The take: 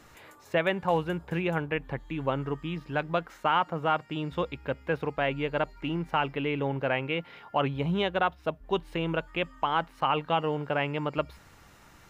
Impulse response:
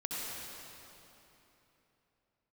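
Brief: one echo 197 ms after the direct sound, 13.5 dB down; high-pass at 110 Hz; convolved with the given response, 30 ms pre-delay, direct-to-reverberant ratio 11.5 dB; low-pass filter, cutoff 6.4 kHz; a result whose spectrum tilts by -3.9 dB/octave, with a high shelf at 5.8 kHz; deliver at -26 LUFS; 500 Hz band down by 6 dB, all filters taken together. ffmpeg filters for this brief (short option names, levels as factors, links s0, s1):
-filter_complex "[0:a]highpass=110,lowpass=6400,equalizer=f=500:t=o:g=-7.5,highshelf=f=5800:g=-4,aecho=1:1:197:0.211,asplit=2[s0][s1];[1:a]atrim=start_sample=2205,adelay=30[s2];[s1][s2]afir=irnorm=-1:irlink=0,volume=0.178[s3];[s0][s3]amix=inputs=2:normalize=0,volume=2"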